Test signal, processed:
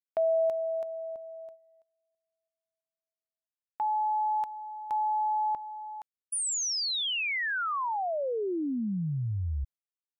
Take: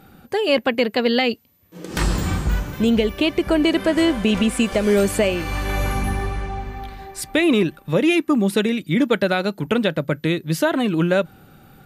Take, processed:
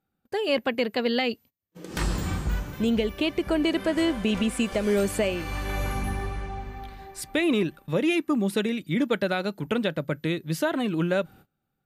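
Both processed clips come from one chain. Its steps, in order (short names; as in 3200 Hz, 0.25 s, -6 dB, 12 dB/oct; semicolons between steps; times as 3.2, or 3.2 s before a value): gate -41 dBFS, range -26 dB; gain -6.5 dB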